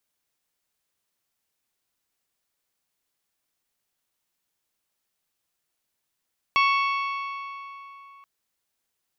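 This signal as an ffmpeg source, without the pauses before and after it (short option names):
-f lavfi -i "aevalsrc='0.126*pow(10,-3*t/3.33)*sin(2*PI*1110*t)+0.0794*pow(10,-3*t/2.705)*sin(2*PI*2220*t)+0.0501*pow(10,-3*t/2.561)*sin(2*PI*2664*t)+0.0316*pow(10,-3*t/2.395)*sin(2*PI*3330*t)+0.02*pow(10,-3*t/2.197)*sin(2*PI*4440*t)+0.0126*pow(10,-3*t/2.055)*sin(2*PI*5550*t)':d=1.68:s=44100"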